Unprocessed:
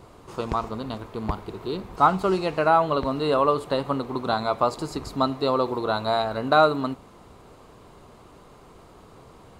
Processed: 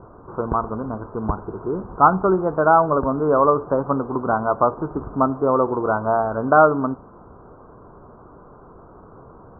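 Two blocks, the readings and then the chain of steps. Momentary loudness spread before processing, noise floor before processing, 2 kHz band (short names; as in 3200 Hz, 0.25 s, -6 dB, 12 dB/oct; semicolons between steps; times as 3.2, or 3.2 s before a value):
13 LU, -50 dBFS, +3.5 dB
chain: Chebyshev low-pass 1500 Hz, order 6; gain +5 dB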